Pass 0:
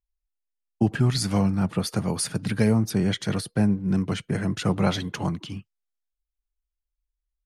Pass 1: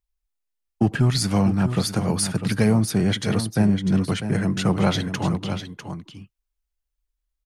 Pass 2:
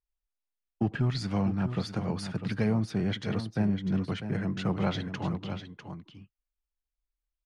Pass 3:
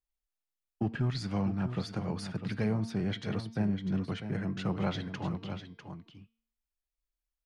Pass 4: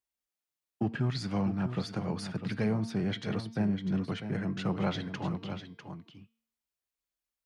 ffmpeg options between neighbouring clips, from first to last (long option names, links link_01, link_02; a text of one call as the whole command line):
ffmpeg -i in.wav -filter_complex "[0:a]asplit=2[link_01][link_02];[link_02]asoftclip=type=hard:threshold=-20.5dB,volume=-6.5dB[link_03];[link_01][link_03]amix=inputs=2:normalize=0,aecho=1:1:649:0.335" out.wav
ffmpeg -i in.wav -af "lowpass=4000,volume=-8.5dB" out.wav
ffmpeg -i in.wav -af "bandreject=frequency=227.5:width_type=h:width=4,bandreject=frequency=455:width_type=h:width=4,bandreject=frequency=682.5:width_type=h:width=4,bandreject=frequency=910:width_type=h:width=4,bandreject=frequency=1137.5:width_type=h:width=4,bandreject=frequency=1365:width_type=h:width=4,bandreject=frequency=1592.5:width_type=h:width=4,bandreject=frequency=1820:width_type=h:width=4,bandreject=frequency=2047.5:width_type=h:width=4,bandreject=frequency=2275:width_type=h:width=4,bandreject=frequency=2502.5:width_type=h:width=4,bandreject=frequency=2730:width_type=h:width=4,bandreject=frequency=2957.5:width_type=h:width=4,bandreject=frequency=3185:width_type=h:width=4,bandreject=frequency=3412.5:width_type=h:width=4,bandreject=frequency=3640:width_type=h:width=4,bandreject=frequency=3867.5:width_type=h:width=4,bandreject=frequency=4095:width_type=h:width=4,bandreject=frequency=4322.5:width_type=h:width=4,bandreject=frequency=4550:width_type=h:width=4,bandreject=frequency=4777.5:width_type=h:width=4,bandreject=frequency=5005:width_type=h:width=4,bandreject=frequency=5232.5:width_type=h:width=4,bandreject=frequency=5460:width_type=h:width=4,bandreject=frequency=5687.5:width_type=h:width=4,volume=-3dB" out.wav
ffmpeg -i in.wav -af "highpass=100,volume=1.5dB" out.wav